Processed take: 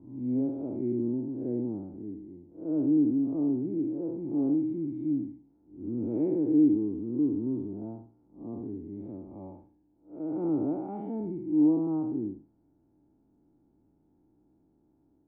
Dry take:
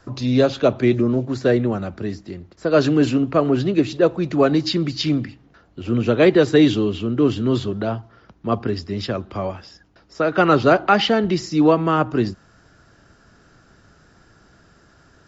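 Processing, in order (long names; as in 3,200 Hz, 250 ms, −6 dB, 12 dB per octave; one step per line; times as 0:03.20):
spectrum smeared in time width 162 ms
formant resonators in series u
high-shelf EQ 2,800 Hz +8 dB
level −2.5 dB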